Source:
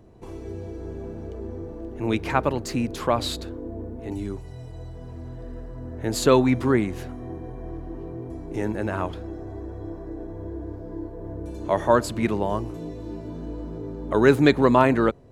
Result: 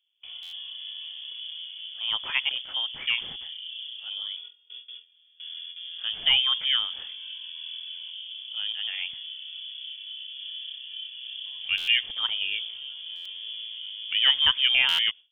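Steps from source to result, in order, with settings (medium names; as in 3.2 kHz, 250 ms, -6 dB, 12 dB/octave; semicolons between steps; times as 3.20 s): gate with hold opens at -29 dBFS; 8.10–10.41 s: treble shelf 2.2 kHz -11.5 dB; frequency inversion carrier 3.4 kHz; buffer glitch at 0.42/11.77/13.15/14.88 s, samples 512; trim -5 dB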